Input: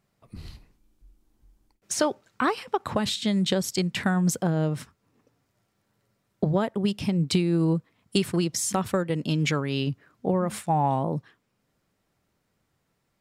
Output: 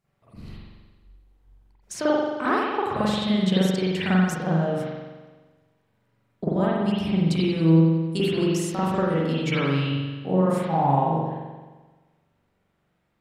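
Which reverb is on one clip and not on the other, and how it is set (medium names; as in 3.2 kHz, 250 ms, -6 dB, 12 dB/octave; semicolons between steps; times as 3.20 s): spring tank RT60 1.3 s, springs 43 ms, chirp 50 ms, DRR -10 dB; trim -7.5 dB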